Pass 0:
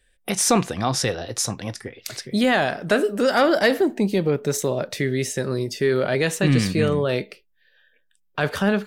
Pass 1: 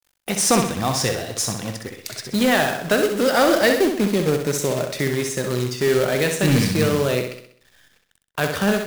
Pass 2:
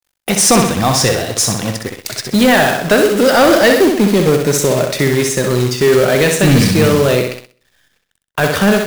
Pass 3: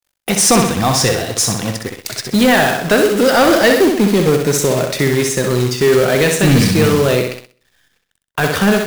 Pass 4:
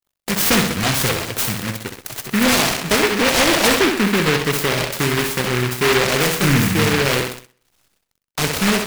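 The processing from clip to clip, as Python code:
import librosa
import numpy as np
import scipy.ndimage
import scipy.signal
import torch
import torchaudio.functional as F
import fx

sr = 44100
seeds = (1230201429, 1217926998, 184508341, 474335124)

y1 = fx.quant_companded(x, sr, bits=4)
y1 = fx.room_flutter(y1, sr, wall_m=11.0, rt60_s=0.6)
y2 = fx.leveller(y1, sr, passes=2)
y2 = y2 * librosa.db_to_amplitude(2.0)
y3 = fx.notch(y2, sr, hz=590.0, q=16.0)
y3 = y3 * librosa.db_to_amplitude(-1.0)
y4 = fx.noise_mod_delay(y3, sr, seeds[0], noise_hz=1700.0, depth_ms=0.3)
y4 = y4 * librosa.db_to_amplitude(-4.5)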